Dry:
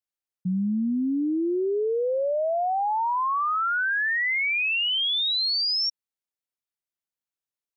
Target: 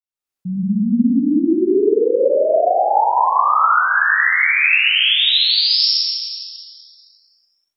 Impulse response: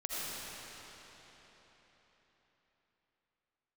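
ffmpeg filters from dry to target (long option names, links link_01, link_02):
-filter_complex "[0:a]dynaudnorm=framelen=130:gausssize=3:maxgain=11dB[link_01];[1:a]atrim=start_sample=2205,asetrate=88200,aresample=44100[link_02];[link_01][link_02]afir=irnorm=-1:irlink=0"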